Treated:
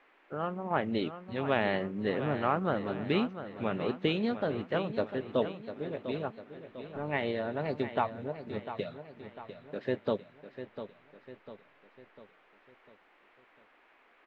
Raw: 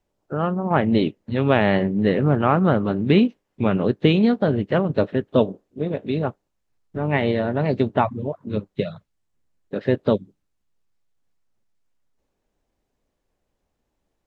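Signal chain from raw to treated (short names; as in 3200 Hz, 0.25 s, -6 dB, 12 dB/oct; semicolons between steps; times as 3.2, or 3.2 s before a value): bell 110 Hz -8.5 dB 2.9 oct; band noise 270–2400 Hz -56 dBFS; on a send: feedback echo 0.699 s, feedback 48%, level -11 dB; on the sum: gain -8.5 dB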